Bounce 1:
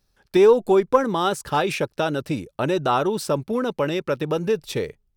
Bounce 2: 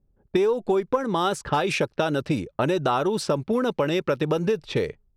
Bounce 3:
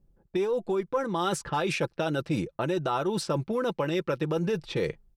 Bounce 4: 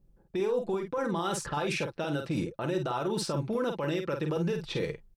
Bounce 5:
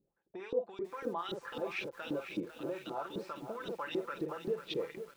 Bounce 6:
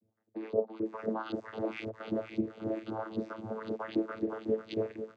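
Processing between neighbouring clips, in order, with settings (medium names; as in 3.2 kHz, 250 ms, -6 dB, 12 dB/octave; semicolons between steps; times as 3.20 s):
compression 8:1, threshold -23 dBFS, peak gain reduction 13 dB; level-controlled noise filter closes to 400 Hz, open at -23.5 dBFS; trim +4 dB
comb 5.9 ms, depth 41%; reverse; compression, threshold -27 dBFS, peak gain reduction 12.5 dB; reverse; trim +2 dB
peak limiter -23.5 dBFS, peak gain reduction 8 dB; doubling 48 ms -6 dB
LFO band-pass saw up 3.8 Hz 280–4000 Hz; bit-crushed delay 498 ms, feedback 55%, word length 9-bit, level -9.5 dB
vocoder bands 16, saw 110 Hz; trim +4.5 dB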